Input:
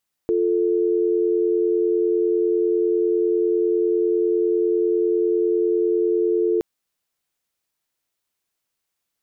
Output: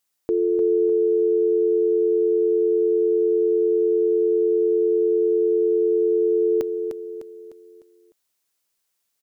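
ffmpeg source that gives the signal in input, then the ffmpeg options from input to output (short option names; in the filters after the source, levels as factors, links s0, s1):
-f lavfi -i "aevalsrc='0.106*(sin(2*PI*350*t)+sin(2*PI*440*t))':d=6.32:s=44100"
-af "bass=f=250:g=-4,treble=f=4000:g=5,aecho=1:1:302|604|906|1208|1510:0.447|0.197|0.0865|0.0381|0.0167"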